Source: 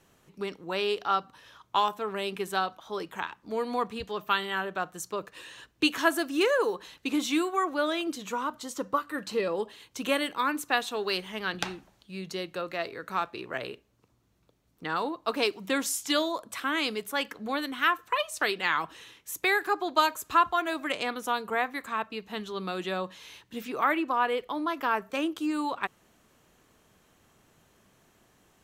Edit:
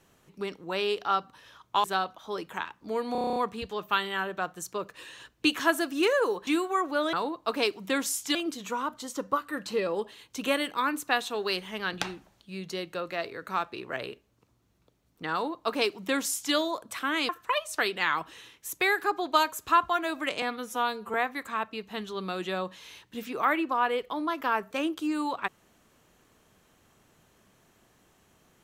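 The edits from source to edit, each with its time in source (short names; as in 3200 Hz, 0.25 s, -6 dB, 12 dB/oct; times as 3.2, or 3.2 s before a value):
1.84–2.46 cut
3.74 stutter 0.03 s, 9 plays
6.85–7.3 cut
14.93–16.15 copy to 7.96
16.9–17.92 cut
21.05–21.53 stretch 1.5×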